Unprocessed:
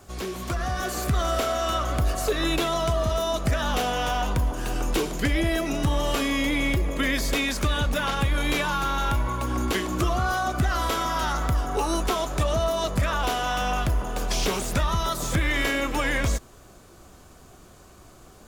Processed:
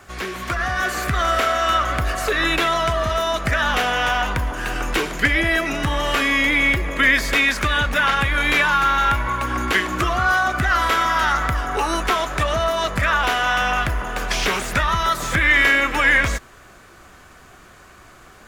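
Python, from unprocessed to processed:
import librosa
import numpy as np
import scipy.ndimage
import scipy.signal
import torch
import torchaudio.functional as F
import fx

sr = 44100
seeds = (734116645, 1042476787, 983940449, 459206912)

y = fx.peak_eq(x, sr, hz=1800.0, db=13.5, octaves=1.6)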